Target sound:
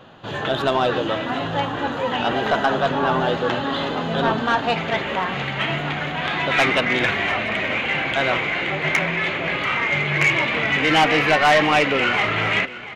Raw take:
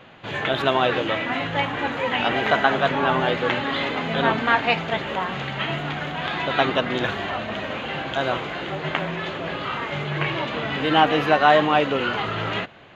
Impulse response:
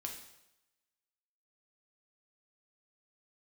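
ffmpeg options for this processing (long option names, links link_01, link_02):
-af "asetnsamples=nb_out_samples=441:pad=0,asendcmd='4.76 equalizer g 4;6.52 equalizer g 13.5',equalizer=frequency=2200:width=3.1:gain=-12,asoftclip=type=tanh:threshold=-12dB,aecho=1:1:688:0.158,volume=2.5dB"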